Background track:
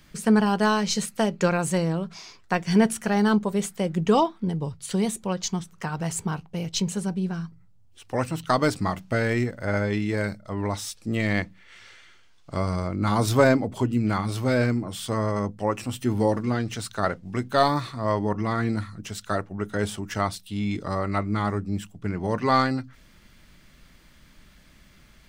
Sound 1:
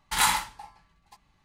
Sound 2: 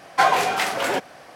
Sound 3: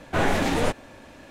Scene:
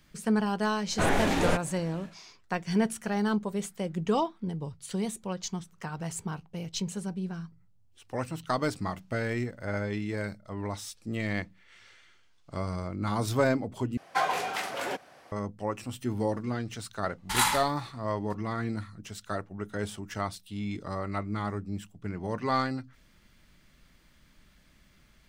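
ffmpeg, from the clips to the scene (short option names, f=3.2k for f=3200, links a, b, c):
-filter_complex "[0:a]volume=-7dB,asplit=2[a][b];[a]atrim=end=13.974[c];[2:a]atrim=end=1.35,asetpts=PTS-STARTPTS,volume=-10dB[d];[b]atrim=start=15.316[e];[3:a]atrim=end=1.3,asetpts=PTS-STARTPTS,volume=-3dB,afade=t=in:d=0.1,afade=t=out:st=1.2:d=0.1,adelay=850[f];[1:a]atrim=end=1.44,asetpts=PTS-STARTPTS,volume=-2.5dB,afade=t=in:d=0.004:c=hsin,afade=t=out:st=1.436:d=0.004:c=hsin,adelay=17180[g];[c][d]acrossfade=d=0.004:c1=hsin:c2=hsin[h];[h][e]acrossfade=d=0.004:c1=hsin:c2=hsin[i];[i][f][g]amix=inputs=3:normalize=0"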